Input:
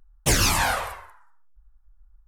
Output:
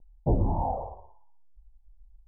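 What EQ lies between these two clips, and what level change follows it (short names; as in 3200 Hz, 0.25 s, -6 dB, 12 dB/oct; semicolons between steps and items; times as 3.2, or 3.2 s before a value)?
steep low-pass 900 Hz 72 dB/oct; air absorption 440 m; 0.0 dB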